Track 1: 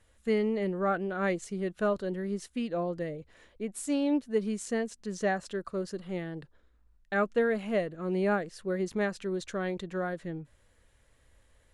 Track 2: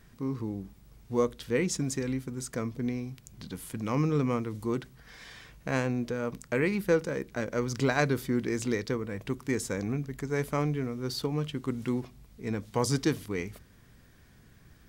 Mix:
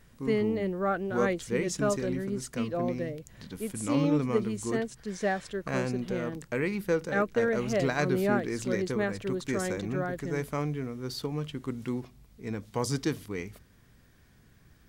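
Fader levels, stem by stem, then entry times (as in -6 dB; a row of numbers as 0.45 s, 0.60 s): 0.0 dB, -2.5 dB; 0.00 s, 0.00 s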